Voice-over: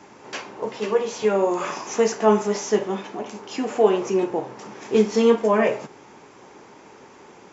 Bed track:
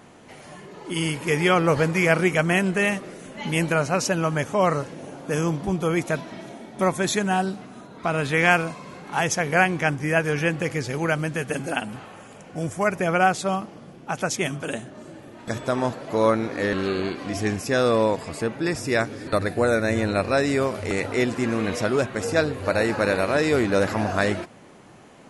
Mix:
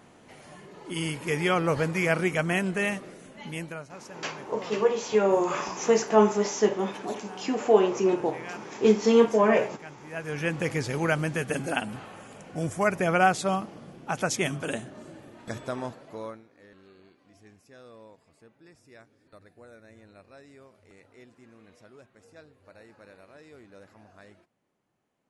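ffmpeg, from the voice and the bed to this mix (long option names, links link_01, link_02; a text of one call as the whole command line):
ffmpeg -i stem1.wav -i stem2.wav -filter_complex "[0:a]adelay=3900,volume=-2dB[link_01];[1:a]volume=15dB,afade=type=out:start_time=3.02:duration=0.88:silence=0.141254,afade=type=in:start_time=10.08:duration=0.61:silence=0.0944061,afade=type=out:start_time=14.76:duration=1.68:silence=0.0398107[link_02];[link_01][link_02]amix=inputs=2:normalize=0" out.wav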